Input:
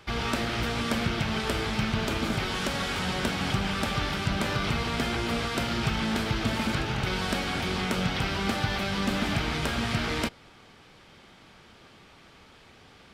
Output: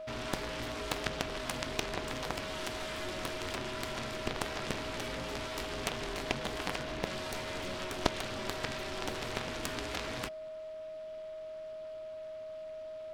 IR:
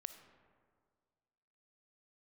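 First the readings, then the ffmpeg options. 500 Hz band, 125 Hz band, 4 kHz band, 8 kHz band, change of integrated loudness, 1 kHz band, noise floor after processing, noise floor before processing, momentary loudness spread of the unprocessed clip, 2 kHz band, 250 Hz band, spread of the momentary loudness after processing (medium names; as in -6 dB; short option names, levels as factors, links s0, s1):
-3.5 dB, -14.0 dB, -8.0 dB, -4.5 dB, -9.5 dB, -8.0 dB, -44 dBFS, -54 dBFS, 1 LU, -9.0 dB, -12.5 dB, 8 LU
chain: -af "aeval=exprs='val(0)*sin(2*PI*180*n/s)':c=same,aeval=exprs='val(0)+0.0158*sin(2*PI*630*n/s)':c=same,aeval=exprs='0.2*(cos(1*acos(clip(val(0)/0.2,-1,1)))-cos(1*PI/2))+0.0631*(cos(2*acos(clip(val(0)/0.2,-1,1)))-cos(2*PI/2))+0.0891*(cos(3*acos(clip(val(0)/0.2,-1,1)))-cos(3*PI/2))+0.0224*(cos(4*acos(clip(val(0)/0.2,-1,1)))-cos(4*PI/2))':c=same,volume=1.78"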